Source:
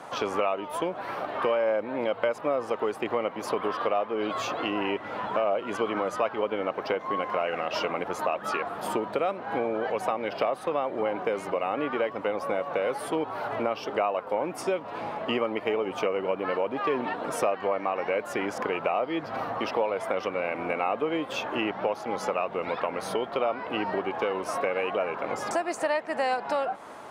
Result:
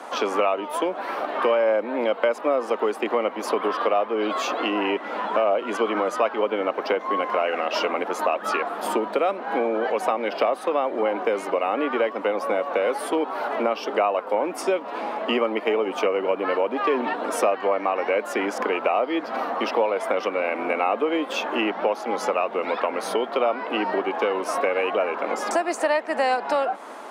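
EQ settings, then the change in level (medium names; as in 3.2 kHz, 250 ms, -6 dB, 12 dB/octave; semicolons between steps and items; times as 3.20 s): steep high-pass 210 Hz 48 dB/octave; +5.0 dB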